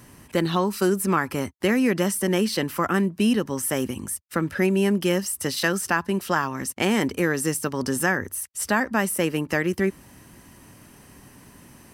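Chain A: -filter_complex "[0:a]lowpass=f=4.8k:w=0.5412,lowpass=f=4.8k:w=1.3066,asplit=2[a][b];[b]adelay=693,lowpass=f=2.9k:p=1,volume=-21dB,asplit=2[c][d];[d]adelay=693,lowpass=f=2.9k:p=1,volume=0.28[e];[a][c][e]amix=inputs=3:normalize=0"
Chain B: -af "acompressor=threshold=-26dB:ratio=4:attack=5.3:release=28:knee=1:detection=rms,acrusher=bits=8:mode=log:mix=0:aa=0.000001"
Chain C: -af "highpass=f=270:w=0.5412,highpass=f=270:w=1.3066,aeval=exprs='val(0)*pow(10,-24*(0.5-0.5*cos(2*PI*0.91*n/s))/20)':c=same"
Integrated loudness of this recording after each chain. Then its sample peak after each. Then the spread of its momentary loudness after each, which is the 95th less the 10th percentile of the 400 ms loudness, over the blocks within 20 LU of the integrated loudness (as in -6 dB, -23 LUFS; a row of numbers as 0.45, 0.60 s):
-24.5, -29.0, -30.5 LUFS; -7.5, -12.5, -9.5 dBFS; 7, 21, 20 LU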